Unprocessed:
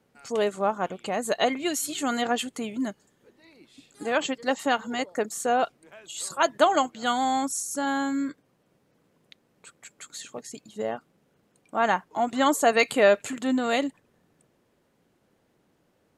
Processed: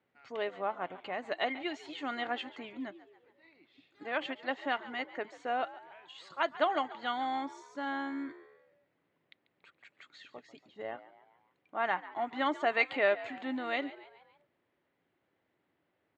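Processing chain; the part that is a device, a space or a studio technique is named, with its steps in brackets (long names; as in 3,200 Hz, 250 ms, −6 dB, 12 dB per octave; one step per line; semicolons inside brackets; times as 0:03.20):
frequency-shifting delay pedal into a guitar cabinet (echo with shifted repeats 141 ms, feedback 50%, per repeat +75 Hz, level −17 dB; loudspeaker in its box 100–3,800 Hz, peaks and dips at 140 Hz −6 dB, 210 Hz −10 dB, 470 Hz −5 dB, 2,000 Hz +6 dB)
level −8.5 dB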